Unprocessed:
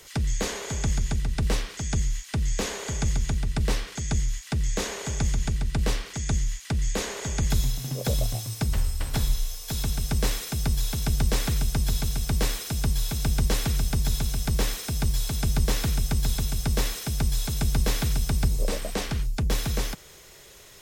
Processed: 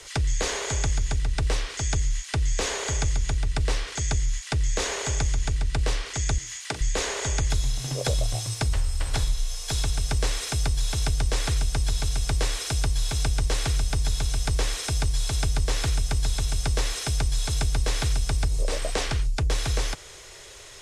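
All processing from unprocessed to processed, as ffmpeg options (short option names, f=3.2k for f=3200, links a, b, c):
-filter_complex "[0:a]asettb=1/sr,asplit=3[a][b][c];[a]atrim=end=6.384[d];[b]atrim=start=6.38:end=6.81,asetpts=PTS-STARTPTS,afade=t=in:d=0.004:c=qsin,afade=t=out:st=0.426:d=0.004:c=qsin,highpass=230,equalizer=f=14k:w=6.5:g=11.5,asplit=2[e][f];[f]adelay=43,volume=-12dB[g];[e][g]amix=inputs=2:normalize=0,atrim=end_sample=18963[h];[c]atrim=start=6.806[i];[d][h]acrossfade=d=0.004:c1=hsin:c2=qsin[j];[j][i]acrossfade=d=0.004:c1=qsin:c2=hsin,lowpass=f=9.9k:w=0.5412,lowpass=f=9.9k:w=1.3066,equalizer=f=200:t=o:w=0.82:g=-13.5,acompressor=threshold=-27dB:ratio=3,volume=5.5dB"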